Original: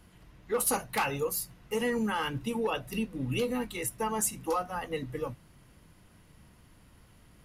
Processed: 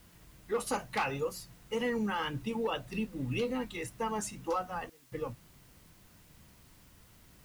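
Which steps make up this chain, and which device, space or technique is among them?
worn cassette (LPF 6100 Hz 12 dB/oct; wow and flutter; level dips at 4.9, 0.217 s -28 dB; white noise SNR 27 dB); gain -2.5 dB

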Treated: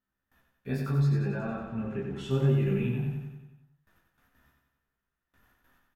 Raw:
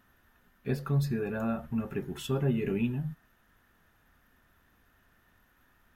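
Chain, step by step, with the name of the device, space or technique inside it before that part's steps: double-tracked vocal (doubler 15 ms -3 dB; chorus 0.78 Hz, delay 20 ms, depth 8 ms); gate with hold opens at -55 dBFS; 0.98–2.31 air absorption 83 m; feedback echo 92 ms, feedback 57%, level -5 dB

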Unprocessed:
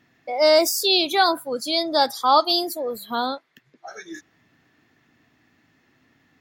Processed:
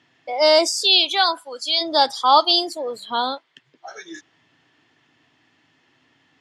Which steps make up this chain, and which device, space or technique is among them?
car door speaker (speaker cabinet 110–8700 Hz, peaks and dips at 210 Hz -9 dB, 930 Hz +5 dB, 3100 Hz +10 dB, 4900 Hz +3 dB, 8000 Hz +3 dB); 0.83–1.8 HPF 610 Hz -> 1300 Hz 6 dB/oct

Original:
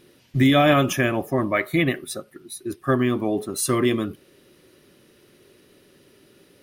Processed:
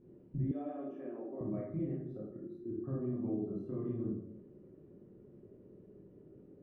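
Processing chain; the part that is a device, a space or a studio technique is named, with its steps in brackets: television next door (compressor 4:1, threshold -35 dBFS, peak gain reduction 18.5 dB; LPF 400 Hz 12 dB/oct; reverb RT60 0.70 s, pre-delay 19 ms, DRR -5.5 dB); 0.51–1.41 HPF 290 Hz 24 dB/oct; gain -6 dB

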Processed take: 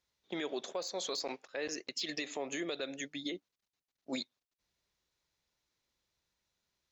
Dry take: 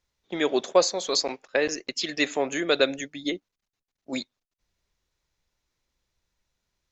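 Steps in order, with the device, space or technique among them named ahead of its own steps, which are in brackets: broadcast voice chain (HPF 120 Hz 6 dB/oct; de-esser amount 55%; compressor 4:1, threshold -28 dBFS, peak gain reduction 12.5 dB; bell 4000 Hz +3 dB 0.77 oct; limiter -23.5 dBFS, peak gain reduction 9.5 dB); 1.98–2.77 bell 1500 Hz -9 dB 0.21 oct; gain -4 dB

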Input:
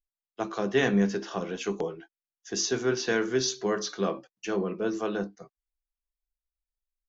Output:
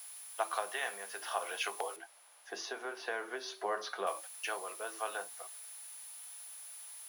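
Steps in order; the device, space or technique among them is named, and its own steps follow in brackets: medium wave at night (BPF 140–3900 Hz; compressor, threshold -29 dBFS, peak gain reduction 10 dB; tremolo 0.51 Hz, depth 35%; whine 10000 Hz -53 dBFS; white noise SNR 22 dB); Chebyshev high-pass 710 Hz, order 3; 1.96–4.07 tilt -4 dB/oct; gain +5.5 dB

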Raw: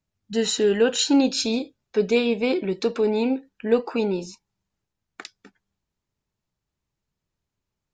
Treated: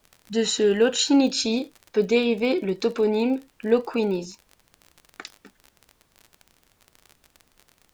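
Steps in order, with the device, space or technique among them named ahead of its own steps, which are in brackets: vinyl LP (crackle 37/s -33 dBFS; pink noise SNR 40 dB)

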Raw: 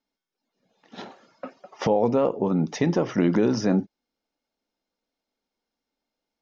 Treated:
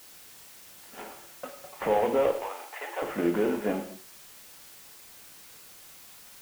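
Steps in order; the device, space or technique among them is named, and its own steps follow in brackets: army field radio (BPF 360–3200 Hz; CVSD 16 kbps; white noise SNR 18 dB); 2.31–3.02 HPF 640 Hz 24 dB/oct; non-linear reverb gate 0.25 s falling, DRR 4.5 dB; gain -2 dB

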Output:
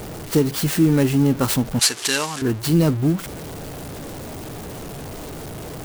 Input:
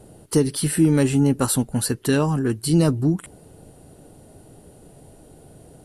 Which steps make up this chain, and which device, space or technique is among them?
early CD player with a faulty converter (zero-crossing step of -28.5 dBFS; clock jitter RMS 0.026 ms); 1.79–2.42 weighting filter ITU-R 468

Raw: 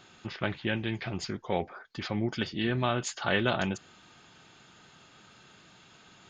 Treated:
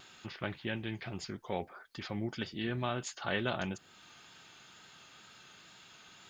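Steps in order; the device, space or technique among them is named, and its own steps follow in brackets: noise-reduction cassette on a plain deck (mismatched tape noise reduction encoder only; wow and flutter 29 cents; white noise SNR 42 dB); gain -6.5 dB

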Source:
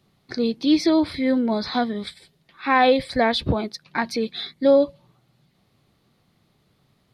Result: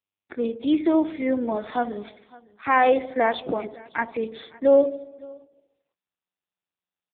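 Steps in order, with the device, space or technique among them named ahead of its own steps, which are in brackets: dark delay 72 ms, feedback 57%, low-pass 710 Hz, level -12 dB; gate -51 dBFS, range -40 dB; satellite phone (BPF 310–3300 Hz; echo 0.558 s -23 dB; AMR-NB 5.9 kbps 8000 Hz)

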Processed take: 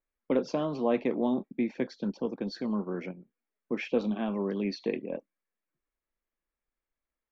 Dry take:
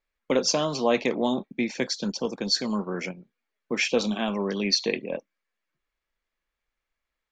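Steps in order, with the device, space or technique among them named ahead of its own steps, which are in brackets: phone in a pocket (LPF 3300 Hz 12 dB/oct; bell 290 Hz +5 dB 1.1 oct; high shelf 2100 Hz -9.5 dB); gain -5.5 dB

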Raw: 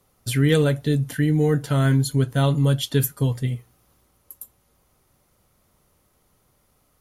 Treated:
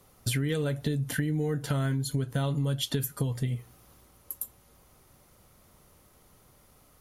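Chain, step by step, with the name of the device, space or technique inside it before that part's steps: serial compression, peaks first (compressor, threshold -25 dBFS, peak gain reduction 11 dB; compressor 2:1, threshold -34 dBFS, peak gain reduction 6.5 dB); gain +4.5 dB

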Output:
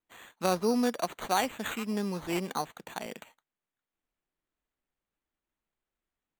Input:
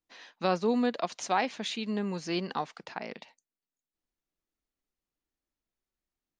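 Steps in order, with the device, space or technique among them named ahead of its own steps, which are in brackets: crushed at another speed (playback speed 0.5×; sample-and-hold 17×; playback speed 2×)

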